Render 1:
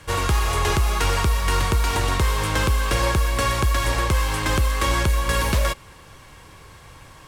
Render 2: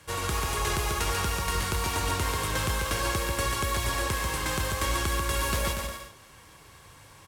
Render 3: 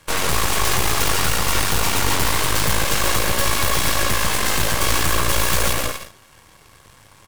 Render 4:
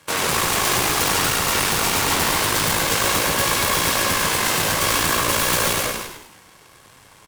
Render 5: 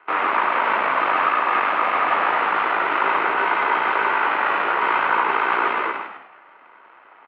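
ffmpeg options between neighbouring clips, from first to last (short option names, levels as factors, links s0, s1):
-filter_complex "[0:a]highpass=f=74:p=1,highshelf=f=5900:g=6.5,asplit=2[s0][s1];[s1]aecho=0:1:140|238|306.6|354.6|388.2:0.631|0.398|0.251|0.158|0.1[s2];[s0][s2]amix=inputs=2:normalize=0,volume=0.376"
-af "acontrast=21,aeval=exprs='(mod(5.01*val(0)+1,2)-1)/5.01':c=same,aeval=exprs='0.211*(cos(1*acos(clip(val(0)/0.211,-1,1)))-cos(1*PI/2))+0.0335*(cos(3*acos(clip(val(0)/0.211,-1,1)))-cos(3*PI/2))+0.0596*(cos(4*acos(clip(val(0)/0.211,-1,1)))-cos(4*PI/2))+0.0473*(cos(8*acos(clip(val(0)/0.211,-1,1)))-cos(8*PI/2))':c=same,volume=1.26"
-filter_complex "[0:a]highpass=120,asplit=2[s0][s1];[s1]asplit=5[s2][s3][s4][s5][s6];[s2]adelay=101,afreqshift=-63,volume=0.501[s7];[s3]adelay=202,afreqshift=-126,volume=0.226[s8];[s4]adelay=303,afreqshift=-189,volume=0.101[s9];[s5]adelay=404,afreqshift=-252,volume=0.0457[s10];[s6]adelay=505,afreqshift=-315,volume=0.0207[s11];[s7][s8][s9][s10][s11]amix=inputs=5:normalize=0[s12];[s0][s12]amix=inputs=2:normalize=0"
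-af "highpass=f=540:t=q:w=0.5412,highpass=f=540:t=q:w=1.307,lowpass=f=2700:t=q:w=0.5176,lowpass=f=2700:t=q:w=0.7071,lowpass=f=2700:t=q:w=1.932,afreqshift=-160,equalizer=f=1200:t=o:w=0.5:g=10"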